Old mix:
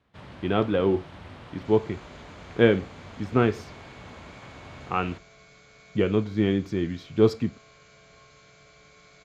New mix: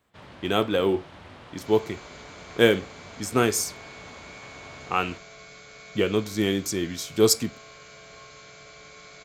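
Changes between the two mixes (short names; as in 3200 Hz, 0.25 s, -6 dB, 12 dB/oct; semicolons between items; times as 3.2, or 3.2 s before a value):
speech: remove air absorption 350 m; second sound +7.5 dB; master: add tone controls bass -5 dB, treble +2 dB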